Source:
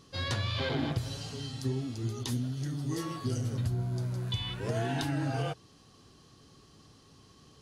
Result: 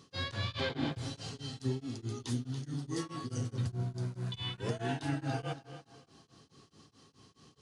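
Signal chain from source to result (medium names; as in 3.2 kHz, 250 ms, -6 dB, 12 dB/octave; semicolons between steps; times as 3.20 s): high-pass 95 Hz; band-stop 610 Hz, Q 12; on a send: tape echo 284 ms, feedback 35%, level -13 dB, low-pass 5.9 kHz; on the sum: resampled via 22.05 kHz; tremolo of two beating tones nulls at 4.7 Hz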